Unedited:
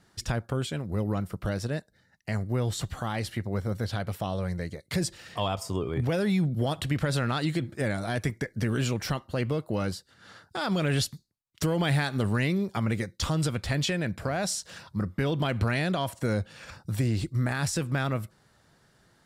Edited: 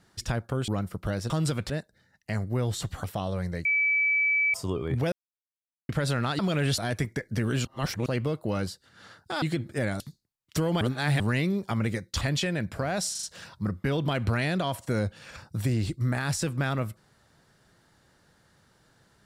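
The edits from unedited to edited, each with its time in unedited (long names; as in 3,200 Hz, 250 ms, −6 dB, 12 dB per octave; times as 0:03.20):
0:00.68–0:01.07: remove
0:03.03–0:04.10: remove
0:04.71–0:05.60: beep over 2,300 Hz −21 dBFS
0:06.18–0:06.95: silence
0:07.45–0:08.03: swap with 0:10.67–0:11.06
0:08.90–0:09.31: reverse
0:11.87–0:12.26: reverse
0:13.27–0:13.67: move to 0:01.69
0:14.57: stutter 0.04 s, 4 plays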